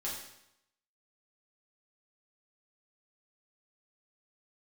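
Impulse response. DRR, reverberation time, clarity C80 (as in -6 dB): -6.5 dB, 0.80 s, 5.5 dB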